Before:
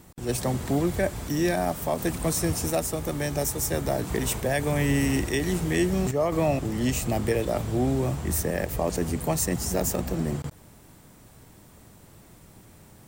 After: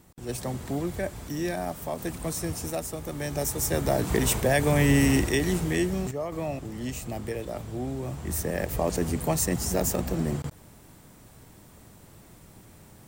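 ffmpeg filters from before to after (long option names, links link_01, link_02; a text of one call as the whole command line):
ffmpeg -i in.wav -af "volume=11dB,afade=type=in:start_time=3.09:duration=1.03:silence=0.375837,afade=type=out:start_time=5.1:duration=1.14:silence=0.281838,afade=type=in:start_time=8.02:duration=0.74:silence=0.398107" out.wav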